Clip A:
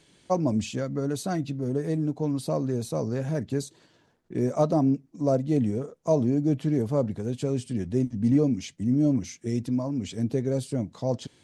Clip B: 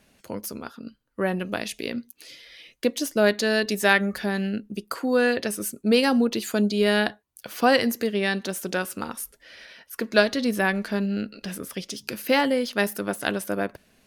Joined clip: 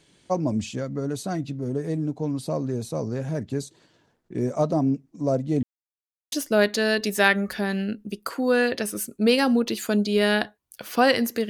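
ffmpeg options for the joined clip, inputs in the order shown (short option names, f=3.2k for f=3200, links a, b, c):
-filter_complex "[0:a]apad=whole_dur=11.49,atrim=end=11.49,asplit=2[a][b];[a]atrim=end=5.63,asetpts=PTS-STARTPTS,afade=t=out:st=5.626:d=0.004:c=hsin[c];[b]atrim=start=5.63:end=6.32,asetpts=PTS-STARTPTS,volume=0[d];[1:a]atrim=start=2.97:end=8.14,asetpts=PTS-STARTPTS,afade=t=in:d=0.004:c=hsin[e];[c][d][e]concat=n=3:v=0:a=1"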